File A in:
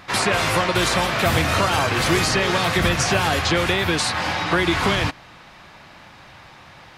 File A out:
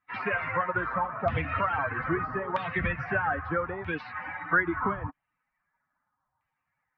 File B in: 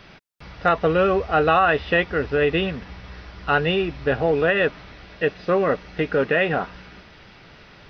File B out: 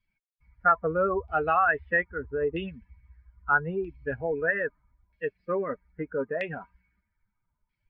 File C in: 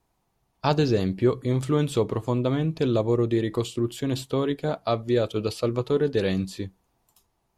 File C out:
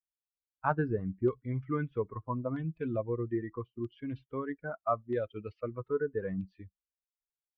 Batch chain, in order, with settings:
expander on every frequency bin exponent 2; steep low-pass 5.8 kHz 72 dB/octave; resonant high shelf 2.5 kHz -13.5 dB, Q 1.5; LFO low-pass saw down 0.78 Hz 970–3200 Hz; trim -6.5 dB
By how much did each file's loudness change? -10.0 LU, -7.0 LU, -10.0 LU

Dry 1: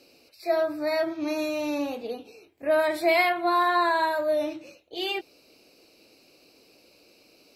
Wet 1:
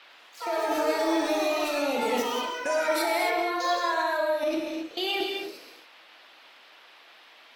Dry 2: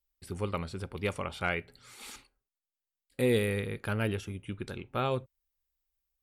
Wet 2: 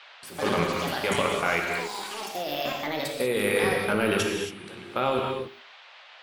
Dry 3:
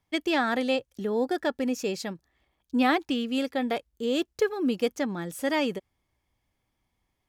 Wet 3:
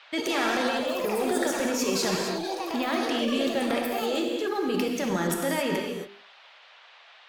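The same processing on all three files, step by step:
gate with hold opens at -48 dBFS; high-pass 250 Hz 12 dB/octave; hum notches 50/100/150/200/250/300/350/400 Hz; compression 5:1, threshold -29 dBFS; transient shaper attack -4 dB, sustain +9 dB; level held to a coarse grid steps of 19 dB; gated-style reverb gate 300 ms flat, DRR 0.5 dB; ever faster or slower copies 86 ms, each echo +6 st, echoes 3, each echo -6 dB; band noise 580–3700 Hz -62 dBFS; MP3 96 kbps 48 kHz; normalise loudness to -27 LUFS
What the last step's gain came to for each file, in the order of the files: +9.0 dB, +12.5 dB, +9.5 dB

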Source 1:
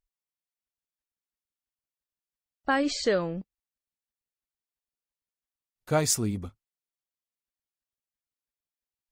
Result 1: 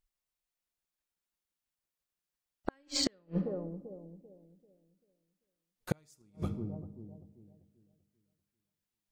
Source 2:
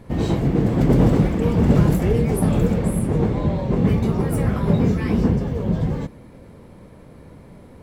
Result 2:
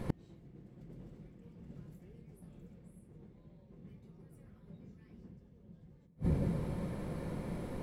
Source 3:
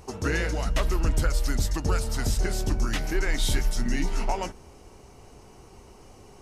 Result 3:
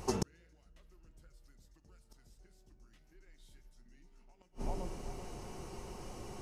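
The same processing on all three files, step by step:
dynamic bell 890 Hz, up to -6 dB, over -38 dBFS, Q 0.94; in parallel at -10.5 dB: crossover distortion -32 dBFS; on the sum: bucket-brigade echo 390 ms, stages 2048, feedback 32%, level -14 dB; simulated room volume 3500 m³, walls furnished, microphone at 0.91 m; inverted gate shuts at -19 dBFS, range -41 dB; trim +2 dB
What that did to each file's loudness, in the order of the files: -10.5 LU, -20.5 LU, -16.0 LU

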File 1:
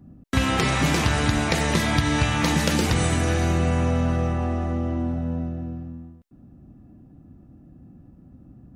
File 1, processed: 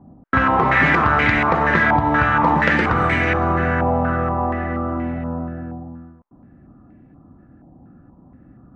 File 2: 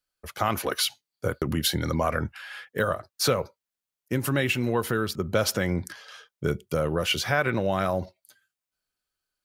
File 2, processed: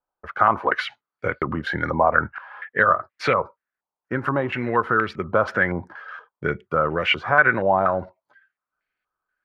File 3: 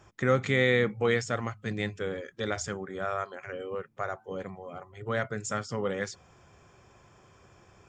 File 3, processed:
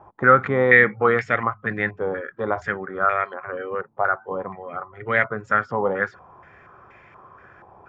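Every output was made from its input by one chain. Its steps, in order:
bass shelf 200 Hz -7 dB; step-sequenced low-pass 4.2 Hz 890–2100 Hz; peak normalisation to -2 dBFS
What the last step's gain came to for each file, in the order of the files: +4.5 dB, +3.0 dB, +6.5 dB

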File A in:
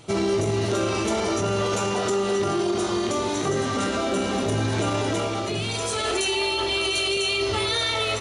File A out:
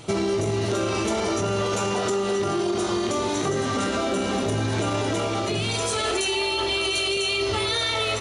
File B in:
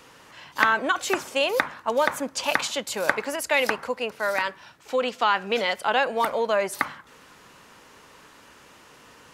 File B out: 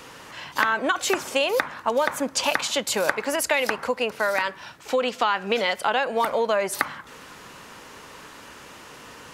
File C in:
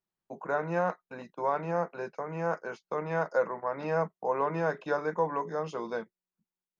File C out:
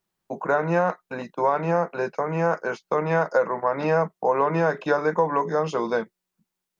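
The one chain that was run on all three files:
compression 3:1, threshold -28 dBFS; normalise loudness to -24 LUFS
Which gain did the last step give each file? +5.0 dB, +7.0 dB, +10.5 dB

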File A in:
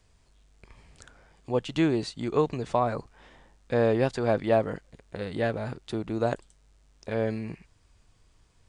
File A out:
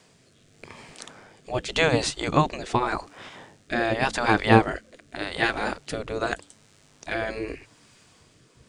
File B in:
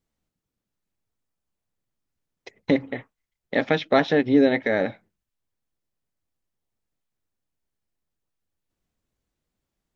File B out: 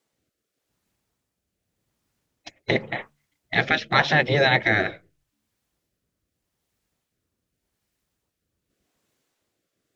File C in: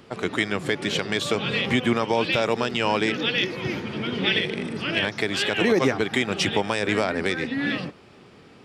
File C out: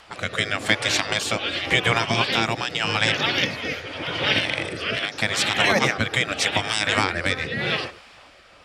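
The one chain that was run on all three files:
rotary cabinet horn 0.85 Hz; de-hum 72.5 Hz, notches 4; spectral gate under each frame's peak -10 dB weak; peak normalisation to -3 dBFS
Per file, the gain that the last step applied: +15.0 dB, +12.5 dB, +10.0 dB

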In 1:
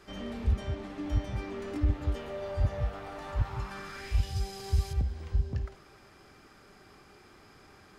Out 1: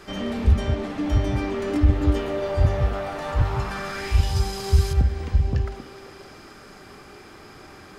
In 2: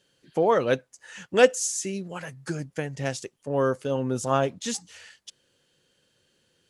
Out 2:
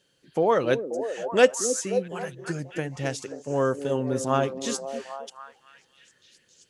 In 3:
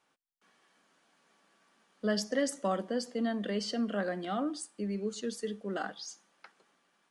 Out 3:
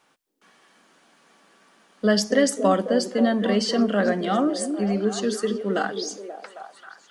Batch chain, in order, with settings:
hum notches 50/100 Hz; repeats whose band climbs or falls 267 ms, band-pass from 320 Hz, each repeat 0.7 oct, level -5 dB; peak normalisation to -6 dBFS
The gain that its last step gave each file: +10.5 dB, -0.5 dB, +11.0 dB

